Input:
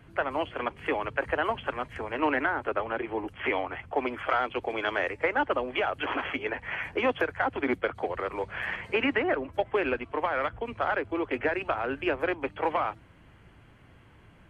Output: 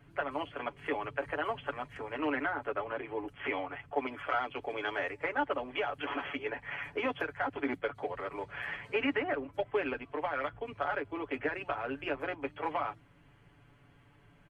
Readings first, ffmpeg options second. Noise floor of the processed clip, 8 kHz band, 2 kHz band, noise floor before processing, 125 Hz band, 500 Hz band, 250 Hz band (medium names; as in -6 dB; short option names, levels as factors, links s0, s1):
-62 dBFS, no reading, -6.0 dB, -56 dBFS, -6.0 dB, -6.0 dB, -5.5 dB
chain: -af "aecho=1:1:7:0.68,volume=0.422"